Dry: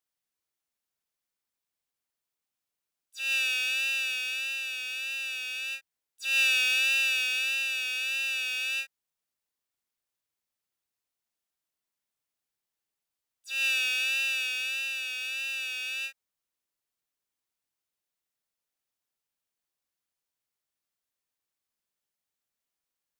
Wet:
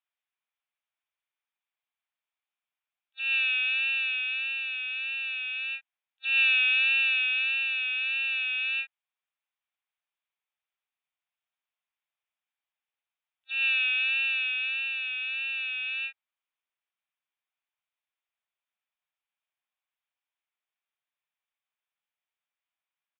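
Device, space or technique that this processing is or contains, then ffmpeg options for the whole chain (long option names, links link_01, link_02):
musical greeting card: -af "aresample=8000,aresample=44100,highpass=frequency=670:width=0.5412,highpass=frequency=670:width=1.3066,equalizer=frequency=2400:width_type=o:width=0.21:gain=5"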